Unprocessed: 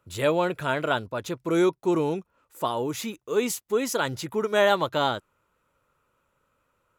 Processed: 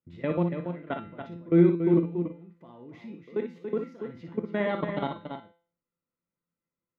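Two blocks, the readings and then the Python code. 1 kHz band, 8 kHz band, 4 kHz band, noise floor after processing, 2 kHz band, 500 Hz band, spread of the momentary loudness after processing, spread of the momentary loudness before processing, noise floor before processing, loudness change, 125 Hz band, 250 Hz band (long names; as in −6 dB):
−10.5 dB, below −40 dB, −17.5 dB, below −85 dBFS, −11.0 dB, −5.0 dB, 21 LU, 10 LU, −73 dBFS, −2.0 dB, +4.0 dB, +2.0 dB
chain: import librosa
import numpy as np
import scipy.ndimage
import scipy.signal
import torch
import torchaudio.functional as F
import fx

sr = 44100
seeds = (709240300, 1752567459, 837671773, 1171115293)

p1 = fx.high_shelf(x, sr, hz=9000.0, db=-8.5)
p2 = fx.level_steps(p1, sr, step_db=23)
p3 = fx.air_absorb(p2, sr, metres=300.0)
p4 = fx.comb_fb(p3, sr, f0_hz=170.0, decay_s=0.42, harmonics='all', damping=0.0, mix_pct=80)
p5 = fx.small_body(p4, sr, hz=(210.0, 2000.0), ring_ms=20, db=16)
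p6 = p5 + fx.echo_multitap(p5, sr, ms=(58, 283, 328), db=(-7.0, -7.5, -16.5), dry=0)
y = F.gain(torch.from_numpy(p6), 3.0).numpy()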